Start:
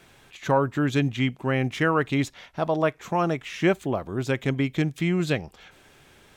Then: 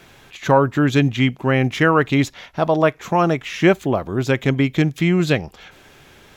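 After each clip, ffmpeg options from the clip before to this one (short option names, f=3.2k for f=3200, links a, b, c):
-af "equalizer=f=8.6k:w=7.8:g=-12,volume=7dB"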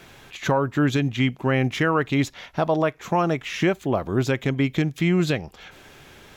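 -af "alimiter=limit=-10.5dB:level=0:latency=1:release=447"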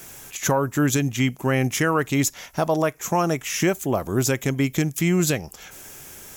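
-af "aexciter=amount=8.6:drive=3:freq=5.6k"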